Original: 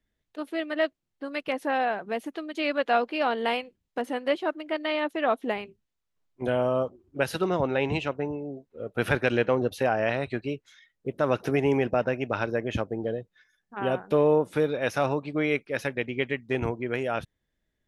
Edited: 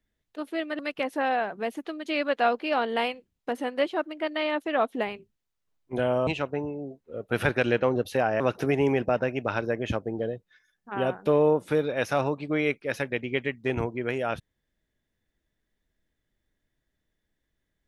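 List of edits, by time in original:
0.79–1.28 s: delete
6.76–7.93 s: delete
10.06–11.25 s: delete

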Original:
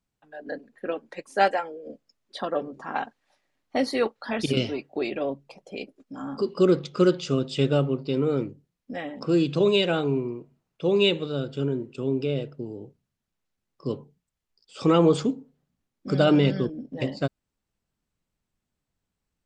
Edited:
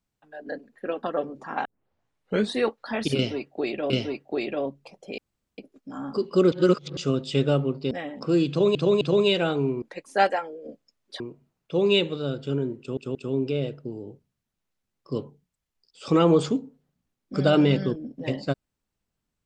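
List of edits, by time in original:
1.03–2.41 s: move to 10.30 s
3.03 s: tape start 0.97 s
4.54–5.28 s: loop, 2 plays
5.82 s: insert room tone 0.40 s
6.76–7.21 s: reverse
8.15–8.91 s: delete
9.49–9.75 s: loop, 3 plays
11.89 s: stutter 0.18 s, 3 plays

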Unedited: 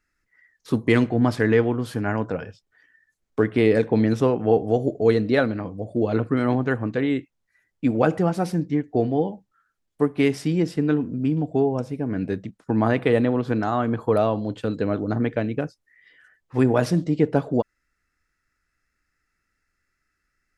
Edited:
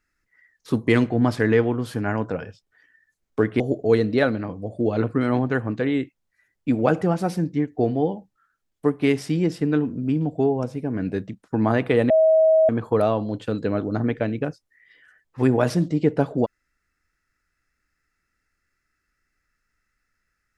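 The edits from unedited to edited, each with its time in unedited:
3.60–4.76 s: delete
13.26–13.85 s: bleep 638 Hz -12.5 dBFS

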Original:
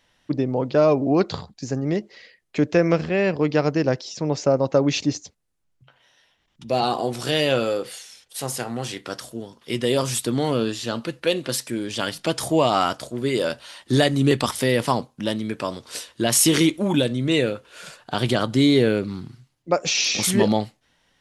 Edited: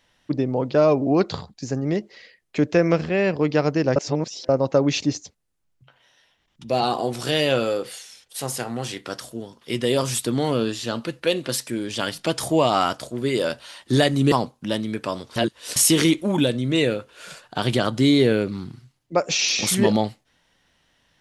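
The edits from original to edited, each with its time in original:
3.96–4.49 s: reverse
14.32–14.88 s: delete
15.92–16.32 s: reverse

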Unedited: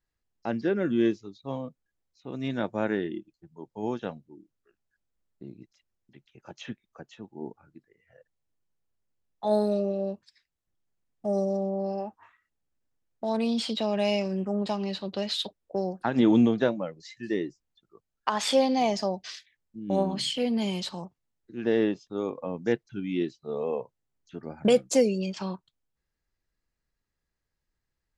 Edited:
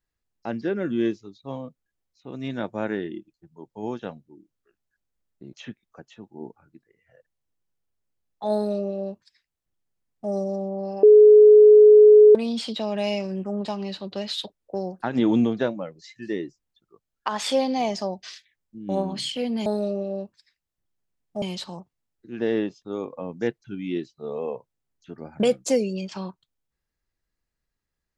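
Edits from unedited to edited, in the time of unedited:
5.53–6.54 s: delete
9.55–11.31 s: copy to 20.67 s
12.04–13.36 s: bleep 423 Hz -7.5 dBFS

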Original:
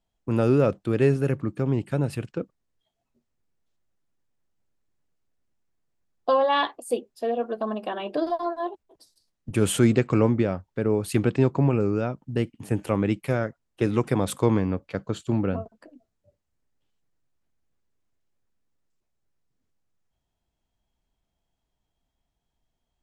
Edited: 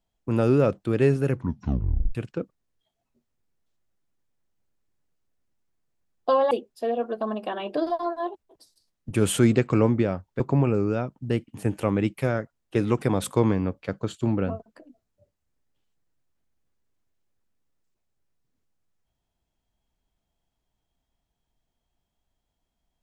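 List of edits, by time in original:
1.31 s: tape stop 0.84 s
6.51–6.91 s: delete
10.80–11.46 s: delete

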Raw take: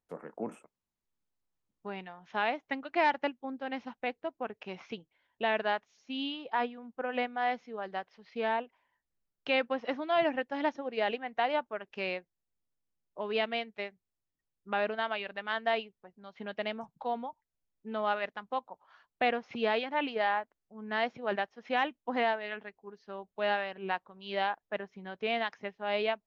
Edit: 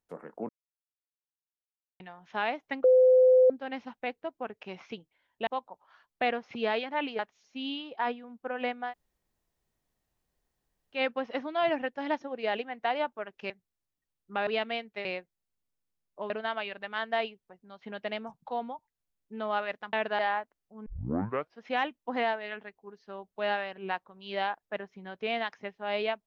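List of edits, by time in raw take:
0.49–2.00 s: mute
2.84–3.50 s: bleep 511 Hz -16 dBFS
5.47–5.73 s: swap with 18.47–20.19 s
7.43–9.51 s: room tone, crossfade 0.10 s
12.04–13.29 s: swap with 13.87–14.84 s
20.86 s: tape start 0.74 s

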